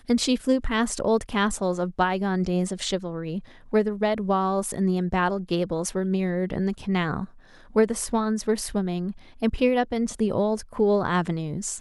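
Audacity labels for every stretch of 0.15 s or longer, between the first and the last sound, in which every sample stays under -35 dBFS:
3.390000	3.730000	silence
7.250000	7.750000	silence
9.120000	9.420000	silence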